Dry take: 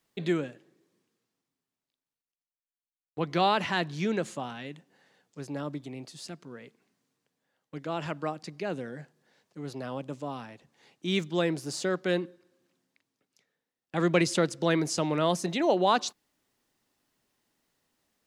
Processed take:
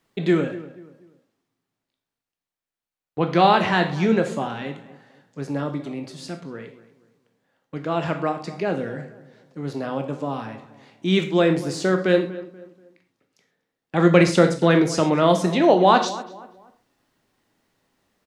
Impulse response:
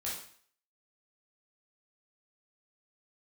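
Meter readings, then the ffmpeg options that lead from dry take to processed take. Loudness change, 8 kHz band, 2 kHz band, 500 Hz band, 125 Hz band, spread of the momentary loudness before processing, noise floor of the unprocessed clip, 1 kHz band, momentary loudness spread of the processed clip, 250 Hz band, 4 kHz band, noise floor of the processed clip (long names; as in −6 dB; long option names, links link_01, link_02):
+9.0 dB, +2.5 dB, +8.0 dB, +9.5 dB, +10.0 dB, 18 LU, below −85 dBFS, +9.0 dB, 19 LU, +9.5 dB, +5.0 dB, below −85 dBFS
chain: -filter_complex "[0:a]highshelf=frequency=3600:gain=-9,asplit=2[link_01][link_02];[link_02]adelay=241,lowpass=frequency=1800:poles=1,volume=-16dB,asplit=2[link_03][link_04];[link_04]adelay=241,lowpass=frequency=1800:poles=1,volume=0.35,asplit=2[link_05][link_06];[link_06]adelay=241,lowpass=frequency=1800:poles=1,volume=0.35[link_07];[link_01][link_03][link_05][link_07]amix=inputs=4:normalize=0,asplit=2[link_08][link_09];[1:a]atrim=start_sample=2205,afade=type=out:start_time=0.19:duration=0.01,atrim=end_sample=8820[link_10];[link_09][link_10]afir=irnorm=-1:irlink=0,volume=-4dB[link_11];[link_08][link_11]amix=inputs=2:normalize=0,volume=6dB"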